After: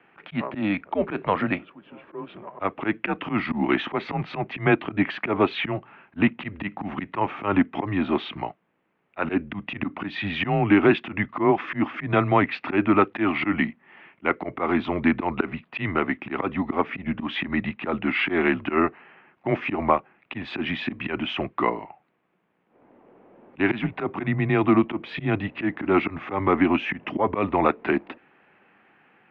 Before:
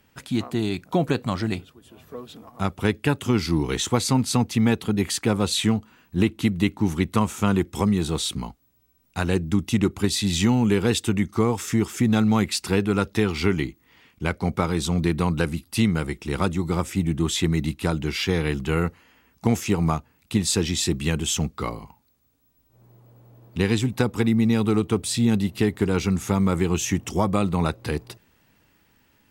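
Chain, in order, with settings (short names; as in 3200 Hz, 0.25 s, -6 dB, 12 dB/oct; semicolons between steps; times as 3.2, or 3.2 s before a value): auto swell 0.108 s; mistuned SSB -98 Hz 340–2700 Hz; gain +8 dB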